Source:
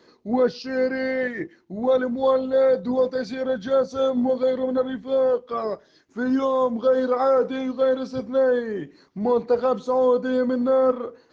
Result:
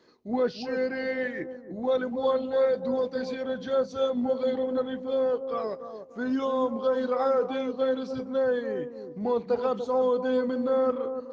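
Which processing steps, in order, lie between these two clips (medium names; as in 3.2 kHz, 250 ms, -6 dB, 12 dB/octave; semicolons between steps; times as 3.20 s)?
dynamic bell 2.9 kHz, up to +5 dB, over -45 dBFS, Q 1.3; on a send: bucket-brigade echo 291 ms, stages 2048, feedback 32%, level -8.5 dB; on the sum: trim -6 dB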